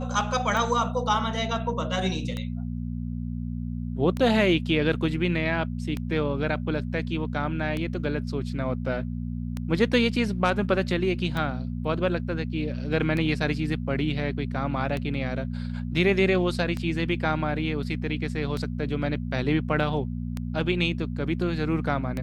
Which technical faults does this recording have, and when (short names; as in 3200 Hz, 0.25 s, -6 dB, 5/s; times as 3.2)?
hum 60 Hz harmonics 4 -31 dBFS
tick 33 1/3 rpm